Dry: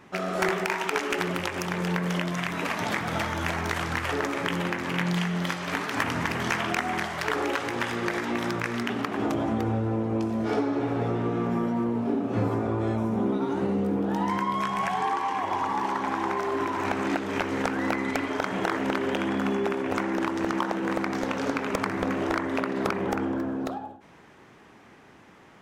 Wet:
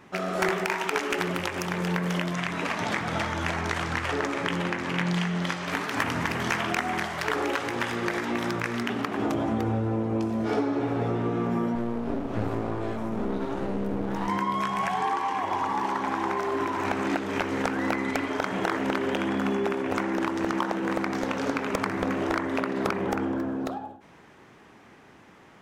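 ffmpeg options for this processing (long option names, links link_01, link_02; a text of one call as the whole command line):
ffmpeg -i in.wav -filter_complex "[0:a]asettb=1/sr,asplit=3[link_01][link_02][link_03];[link_01]atrim=end=2.334[link_04];[link_02]atrim=start=2.33:end=5.68,asetpts=PTS-STARTPTS,afade=type=in:duration=0.004:curve=qsin,afade=type=out:start_time=3.346:duration=0.004:curve=qsin,lowpass=9200[link_05];[link_03]atrim=start=5.676[link_06];[link_04][link_05]acrossfade=duration=0.004:curve1=hsin:curve2=qsin[link_07];[link_07][link_06]acrossfade=duration=0.004:curve1=qsin:curve2=hsin,asettb=1/sr,asplit=3[link_08][link_09][link_10];[link_08]atrim=end=11.754[link_11];[link_09]atrim=start=11.75:end=14.28,asetpts=PTS-STARTPTS,afade=type=in:duration=0.004:curve=qsin,afade=type=out:start_time=2.526:duration=0.004:curve=qsin,aeval=exprs='clip(val(0),-1,0.0126)':channel_layout=same[link_12];[link_10]atrim=start=14.276[link_13];[link_11][link_12]acrossfade=duration=0.004:curve1=hsin:curve2=qsin[link_14];[link_14][link_13]acrossfade=duration=0.004:curve1=qsin:curve2=hsin" out.wav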